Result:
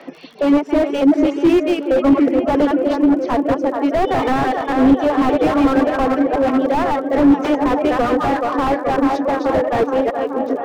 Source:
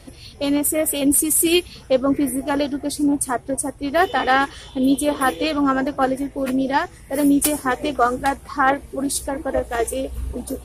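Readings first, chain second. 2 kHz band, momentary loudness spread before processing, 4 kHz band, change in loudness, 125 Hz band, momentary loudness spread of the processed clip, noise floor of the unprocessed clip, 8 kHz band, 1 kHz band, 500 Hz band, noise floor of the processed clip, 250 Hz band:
−1.5 dB, 7 LU, −4.0 dB, +4.0 dB, +5.0 dB, 4 LU, −43 dBFS, below −20 dB, +3.0 dB, +6.5 dB, −26 dBFS, +6.0 dB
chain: delay that plays each chunk backwards 163 ms, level −5 dB
elliptic low-pass filter 6,100 Hz
reverb reduction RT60 0.76 s
Chebyshev high-pass filter 150 Hz, order 8
three-way crossover with the lows and the highs turned down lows −14 dB, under 240 Hz, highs −20 dB, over 2,500 Hz
reversed playback
upward compression, threshold −35 dBFS
reversed playback
surface crackle 34 per second −41 dBFS
on a send: tape delay 427 ms, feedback 85%, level −10 dB, low-pass 1,500 Hz
on the sum: boost into a limiter +10.5 dB
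slew-rate limiting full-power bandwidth 130 Hz

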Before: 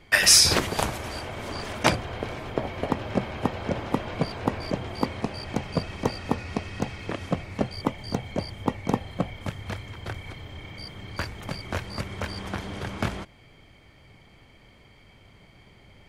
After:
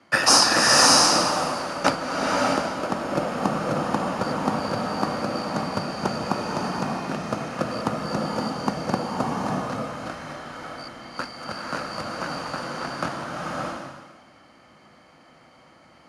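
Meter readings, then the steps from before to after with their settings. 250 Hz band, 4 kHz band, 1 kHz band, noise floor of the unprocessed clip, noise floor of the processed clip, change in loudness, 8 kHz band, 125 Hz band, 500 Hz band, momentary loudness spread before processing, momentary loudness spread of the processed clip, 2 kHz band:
+3.0 dB, +3.5 dB, +8.5 dB, −54 dBFS, −53 dBFS, +3.5 dB, +2.0 dB, −2.0 dB, +4.5 dB, 12 LU, 18 LU, +3.0 dB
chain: in parallel at −5 dB: decimation without filtering 22×
on the sum: frequency shifter −57 Hz
loudspeaker in its box 240–9,800 Hz, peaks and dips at 420 Hz −10 dB, 1,300 Hz +7 dB, 2,200 Hz −8 dB, 3,300 Hz −8 dB, 7,900 Hz −7 dB
slow-attack reverb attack 610 ms, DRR −3 dB

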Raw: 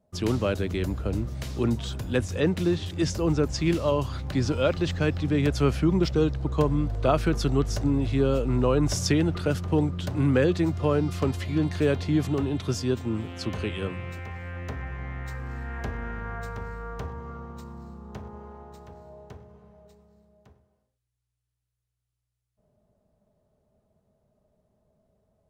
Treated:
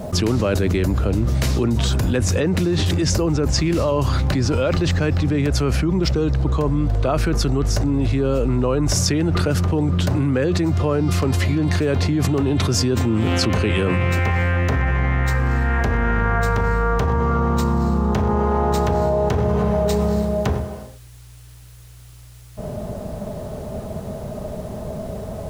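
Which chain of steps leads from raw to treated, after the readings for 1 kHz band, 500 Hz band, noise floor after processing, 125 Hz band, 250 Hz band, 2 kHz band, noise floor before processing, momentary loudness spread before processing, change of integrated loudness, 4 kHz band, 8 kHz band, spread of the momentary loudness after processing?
+10.5 dB, +6.0 dB, −42 dBFS, +9.0 dB, +6.0 dB, +9.5 dB, −82 dBFS, 14 LU, +7.0 dB, +9.5 dB, +11.0 dB, 12 LU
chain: dynamic equaliser 3,300 Hz, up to −5 dB, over −51 dBFS, Q 3.3
envelope flattener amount 100%

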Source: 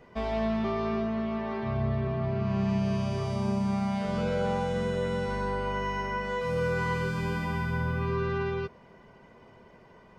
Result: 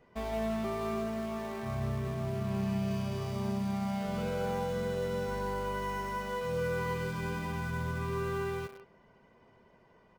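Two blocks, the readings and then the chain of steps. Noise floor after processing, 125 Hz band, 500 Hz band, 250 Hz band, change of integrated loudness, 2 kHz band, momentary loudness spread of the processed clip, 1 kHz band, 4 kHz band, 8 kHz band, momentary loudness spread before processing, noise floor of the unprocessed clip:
−63 dBFS, −5.0 dB, −4.0 dB, −5.0 dB, −4.5 dB, −5.5 dB, 3 LU, −4.0 dB, −3.5 dB, +1.5 dB, 3 LU, −55 dBFS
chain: far-end echo of a speakerphone 170 ms, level −9 dB
in parallel at −6.5 dB: bit-depth reduction 6 bits, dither none
on the sum: level −8.5 dB

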